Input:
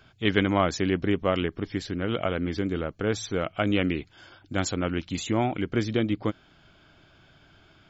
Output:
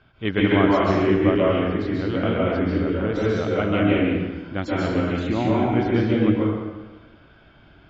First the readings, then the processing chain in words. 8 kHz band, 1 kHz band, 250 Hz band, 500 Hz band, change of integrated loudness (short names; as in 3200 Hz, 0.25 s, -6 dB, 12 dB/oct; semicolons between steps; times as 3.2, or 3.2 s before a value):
n/a, +5.0 dB, +7.0 dB, +6.5 dB, +6.0 dB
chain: air absorption 250 m; plate-style reverb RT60 1.3 s, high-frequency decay 0.75×, pre-delay 0.12 s, DRR -5.5 dB